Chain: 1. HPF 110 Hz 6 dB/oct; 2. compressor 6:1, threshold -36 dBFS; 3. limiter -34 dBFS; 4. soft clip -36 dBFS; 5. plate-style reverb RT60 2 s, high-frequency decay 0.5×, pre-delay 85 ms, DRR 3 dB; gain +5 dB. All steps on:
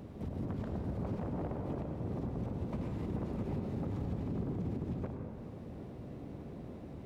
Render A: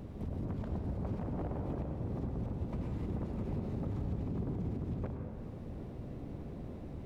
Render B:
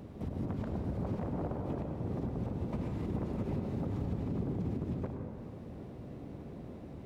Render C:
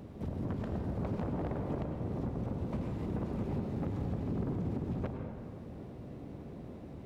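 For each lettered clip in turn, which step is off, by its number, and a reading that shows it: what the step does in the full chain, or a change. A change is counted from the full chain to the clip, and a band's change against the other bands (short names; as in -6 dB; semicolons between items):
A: 1, 125 Hz band +2.0 dB; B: 4, distortion -19 dB; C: 3, mean gain reduction 2.0 dB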